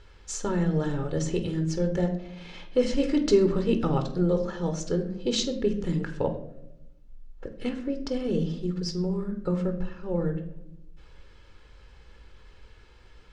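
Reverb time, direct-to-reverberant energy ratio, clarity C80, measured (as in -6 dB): 0.90 s, 6.5 dB, 14.0 dB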